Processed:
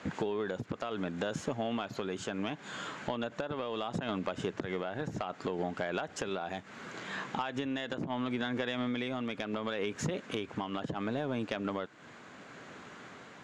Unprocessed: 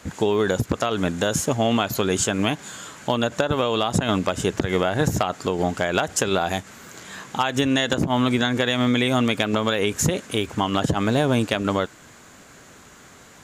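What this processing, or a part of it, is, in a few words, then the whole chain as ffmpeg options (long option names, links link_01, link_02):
AM radio: -af "highpass=140,lowpass=3400,acompressor=threshold=-31dB:ratio=4,asoftclip=type=tanh:threshold=-20dB,tremolo=f=0.7:d=0.26"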